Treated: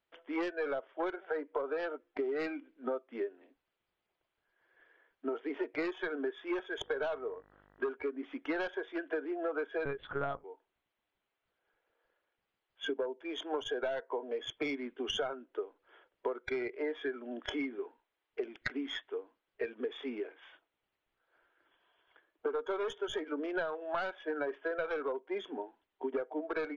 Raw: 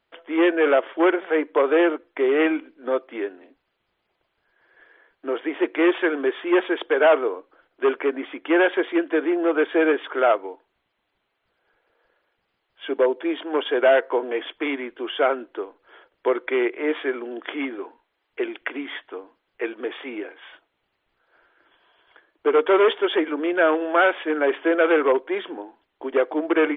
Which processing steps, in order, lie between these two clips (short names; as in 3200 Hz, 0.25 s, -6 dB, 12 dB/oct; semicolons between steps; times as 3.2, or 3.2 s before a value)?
tracing distortion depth 0.064 ms; spectral noise reduction 12 dB; 9.85–10.44 monotone LPC vocoder at 8 kHz 140 Hz; compressor 16:1, threshold -32 dBFS, peak gain reduction 21 dB; 6.8–7.89 buzz 50 Hz, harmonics 39, -66 dBFS -2 dB/oct